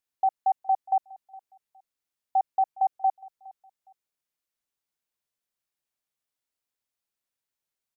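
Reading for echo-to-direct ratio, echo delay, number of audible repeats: -21.5 dB, 0.413 s, 2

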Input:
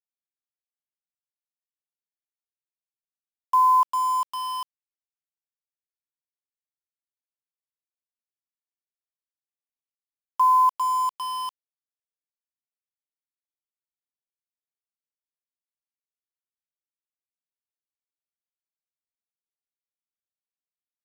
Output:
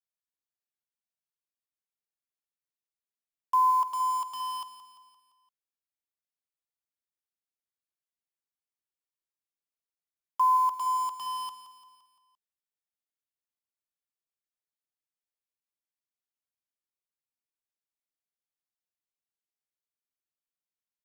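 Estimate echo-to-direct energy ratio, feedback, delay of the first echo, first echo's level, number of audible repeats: -11.5 dB, 52%, 0.172 s, -13.0 dB, 4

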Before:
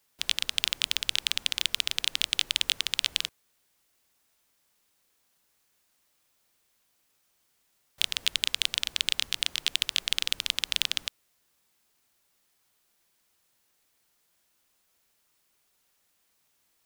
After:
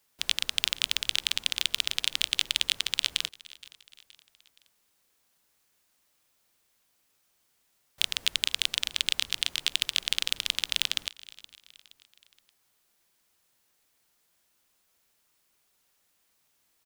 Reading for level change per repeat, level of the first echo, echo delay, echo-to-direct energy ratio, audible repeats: -6.5 dB, -21.0 dB, 0.471 s, -20.0 dB, 3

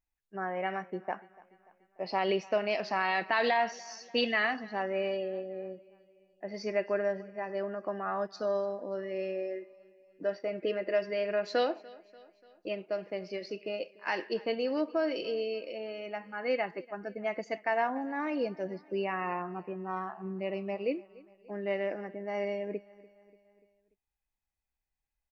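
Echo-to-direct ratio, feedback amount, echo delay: -21.0 dB, 56%, 0.292 s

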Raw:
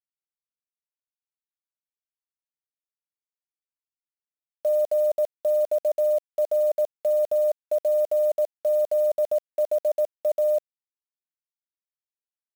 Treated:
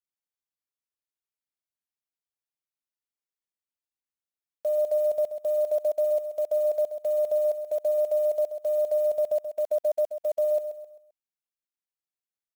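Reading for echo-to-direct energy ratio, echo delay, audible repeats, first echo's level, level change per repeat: -9.5 dB, 0.131 s, 4, -10.0 dB, -8.0 dB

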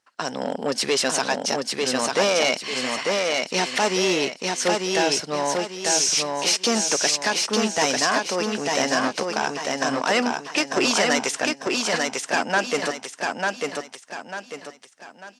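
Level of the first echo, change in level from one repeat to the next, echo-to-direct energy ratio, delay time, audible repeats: -3.0 dB, -8.5 dB, -2.5 dB, 0.896 s, 4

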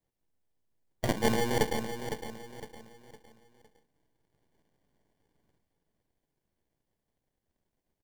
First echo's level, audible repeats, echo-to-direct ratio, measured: -9.0 dB, 4, -8.5 dB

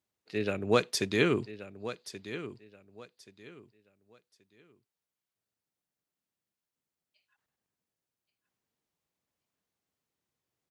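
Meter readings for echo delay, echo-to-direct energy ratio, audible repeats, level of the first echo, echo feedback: 1.129 s, -12.5 dB, 2, -13.0 dB, 26%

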